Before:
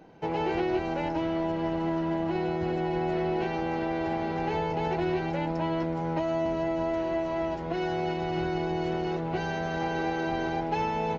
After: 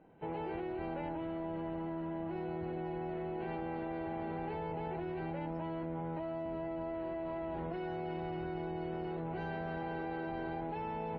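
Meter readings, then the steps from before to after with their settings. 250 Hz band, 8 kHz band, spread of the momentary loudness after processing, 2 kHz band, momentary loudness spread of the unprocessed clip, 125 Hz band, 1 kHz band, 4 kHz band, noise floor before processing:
−9.5 dB, can't be measured, 0 LU, −11.5 dB, 2 LU, −9.0 dB, −10.5 dB, −16.0 dB, −32 dBFS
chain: high-frequency loss of the air 350 metres
output level in coarse steps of 23 dB
level +7 dB
WMA 32 kbit/s 44,100 Hz

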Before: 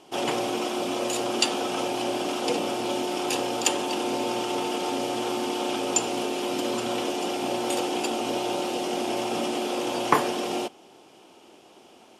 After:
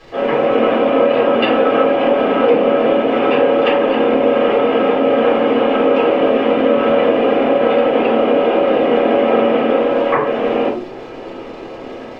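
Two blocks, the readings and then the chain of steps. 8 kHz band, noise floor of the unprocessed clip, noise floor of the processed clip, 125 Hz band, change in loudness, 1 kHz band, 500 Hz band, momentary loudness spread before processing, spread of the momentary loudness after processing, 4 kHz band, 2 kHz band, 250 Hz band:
below −25 dB, −53 dBFS, −31 dBFS, +10.0 dB, +13.0 dB, +10.0 dB, +17.0 dB, 4 LU, 6 LU, +2.5 dB, +11.5 dB, +12.0 dB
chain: loudspeaker in its box 240–2,400 Hz, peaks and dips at 270 Hz +4 dB, 540 Hz +3 dB, 790 Hz −7 dB
automatic gain control gain up to 13 dB
mains-hum notches 60/120/180/240/300/360 Hz
surface crackle 510 per second −34 dBFS
high-frequency loss of the air 200 metres
downward compressor 5 to 1, threshold −22 dBFS, peak gain reduction 11 dB
rectangular room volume 180 cubic metres, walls furnished, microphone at 5.8 metres

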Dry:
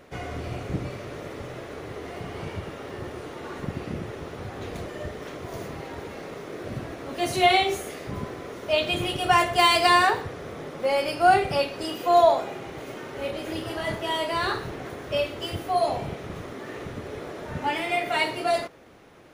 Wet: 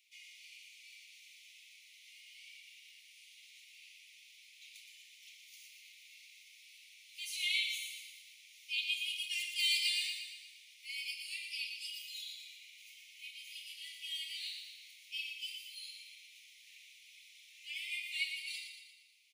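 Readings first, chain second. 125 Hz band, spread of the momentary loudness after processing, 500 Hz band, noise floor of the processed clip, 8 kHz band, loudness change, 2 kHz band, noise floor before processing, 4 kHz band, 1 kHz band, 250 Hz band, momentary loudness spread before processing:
below −40 dB, 23 LU, below −40 dB, −60 dBFS, −7.0 dB, −12.5 dB, −12.5 dB, −40 dBFS, −7.0 dB, below −40 dB, below −40 dB, 18 LU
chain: Butterworth high-pass 2,200 Hz 96 dB per octave
on a send: repeating echo 117 ms, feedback 54%, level −6.5 dB
on the sum: level −8 dB

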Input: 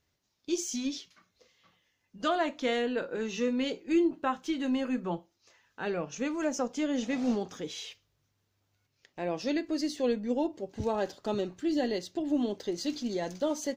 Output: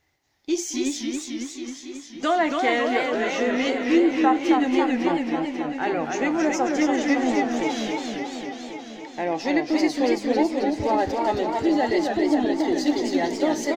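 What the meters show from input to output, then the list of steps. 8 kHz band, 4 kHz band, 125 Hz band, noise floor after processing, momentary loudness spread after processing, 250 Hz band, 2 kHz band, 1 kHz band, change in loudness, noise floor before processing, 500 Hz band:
+7.0 dB, +7.0 dB, +4.5 dB, −41 dBFS, 11 LU, +9.0 dB, +12.5 dB, +13.0 dB, +8.5 dB, −78 dBFS, +8.5 dB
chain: thirty-one-band graphic EQ 200 Hz −9 dB, 315 Hz +6 dB, 800 Hz +12 dB, 2,000 Hz +11 dB
in parallel at −3 dB: brickwall limiter −22 dBFS, peak gain reduction 11 dB
on the sum: far-end echo of a speakerphone 220 ms, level −14 dB
feedback echo with a swinging delay time 273 ms, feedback 73%, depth 154 cents, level −4 dB

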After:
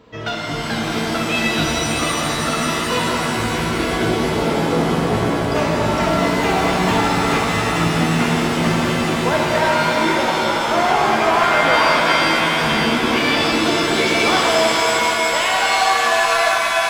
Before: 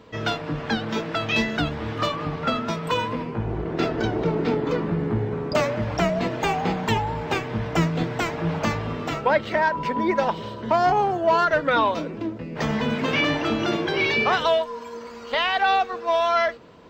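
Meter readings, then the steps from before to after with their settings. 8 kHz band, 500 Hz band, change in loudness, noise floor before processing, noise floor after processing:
+18.0 dB, +5.0 dB, +7.0 dB, −37 dBFS, −22 dBFS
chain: echo with a time of its own for lows and highs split 630 Hz, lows 310 ms, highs 614 ms, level −8 dB
hard clipping −15 dBFS, distortion −20 dB
reverb with rising layers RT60 3.4 s, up +7 semitones, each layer −2 dB, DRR −2.5 dB
level −1 dB

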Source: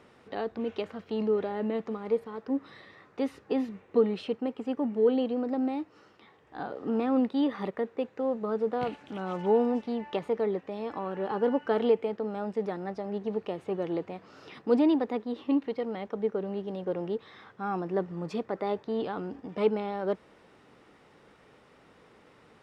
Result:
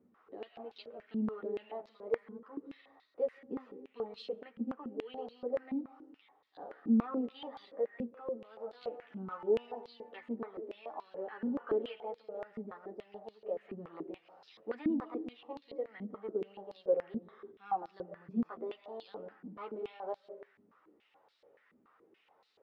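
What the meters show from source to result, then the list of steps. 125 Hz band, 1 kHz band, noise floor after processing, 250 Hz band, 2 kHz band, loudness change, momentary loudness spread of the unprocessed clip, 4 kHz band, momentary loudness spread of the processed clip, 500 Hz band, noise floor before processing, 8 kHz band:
−10.5 dB, −8.5 dB, −71 dBFS, −8.5 dB, −9.5 dB, −9.0 dB, 11 LU, −9.0 dB, 16 LU, −9.0 dB, −59 dBFS, can't be measured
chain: multi-voice chorus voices 4, 0.67 Hz, delay 11 ms, depth 2 ms
comb and all-pass reverb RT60 0.67 s, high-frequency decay 0.3×, pre-delay 105 ms, DRR 11 dB
band-pass on a step sequencer 7 Hz 230–4,200 Hz
level +2.5 dB

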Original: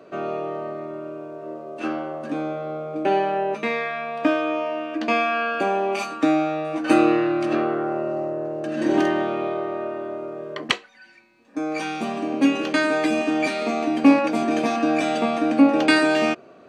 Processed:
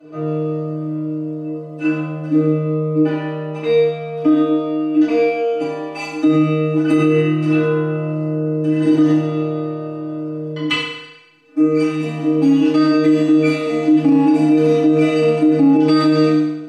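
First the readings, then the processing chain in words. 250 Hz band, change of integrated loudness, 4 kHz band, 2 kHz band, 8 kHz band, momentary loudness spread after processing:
+8.0 dB, +6.0 dB, +2.5 dB, −2.0 dB, can't be measured, 11 LU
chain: low-shelf EQ 140 Hz +11.5 dB
stiff-string resonator 150 Hz, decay 0.22 s, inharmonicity 0.008
feedback delay network reverb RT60 0.97 s, low-frequency decay 0.85×, high-frequency decay 0.95×, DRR −9 dB
boost into a limiter +7.5 dB
level −5 dB

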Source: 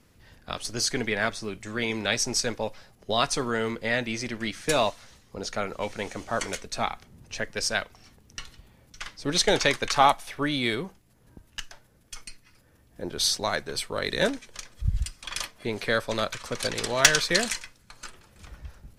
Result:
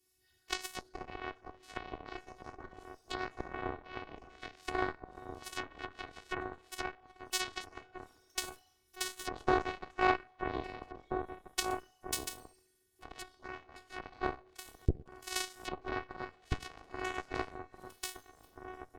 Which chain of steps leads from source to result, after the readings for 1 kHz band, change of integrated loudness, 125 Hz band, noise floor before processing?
−8.5 dB, −13.0 dB, −10.0 dB, −60 dBFS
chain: in parallel at −6 dB: soft clipping −22 dBFS, distortion −8 dB
on the sum: high-pass filter 52 Hz 12 dB per octave
random phases in short frames
coupled-rooms reverb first 0.64 s, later 1.8 s, DRR −3.5 dB
phases set to zero 370 Hz
parametric band 97 Hz +8 dB 1.6 octaves
treble cut that deepens with the level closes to 750 Hz, closed at −20.5 dBFS
first-order pre-emphasis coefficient 0.8
harmonic generator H 2 −15 dB, 3 −14 dB, 6 −43 dB, 7 −23 dB, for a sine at −19 dBFS
slap from a distant wall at 280 metres, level −6 dB
highs frequency-modulated by the lows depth 0.34 ms
level +9 dB

